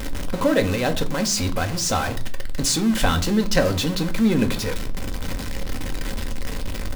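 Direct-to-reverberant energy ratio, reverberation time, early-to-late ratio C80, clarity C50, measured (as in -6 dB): 5.5 dB, 0.40 s, 21.0 dB, 16.5 dB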